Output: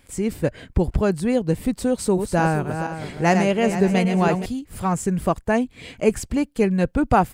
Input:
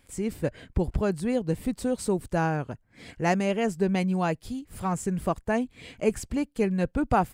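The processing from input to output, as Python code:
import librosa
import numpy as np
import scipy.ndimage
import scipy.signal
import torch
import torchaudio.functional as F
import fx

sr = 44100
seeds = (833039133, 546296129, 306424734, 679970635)

y = fx.reverse_delay_fb(x, sr, ms=235, feedback_pct=56, wet_db=-7.0, at=(1.93, 4.46))
y = y * librosa.db_to_amplitude(6.0)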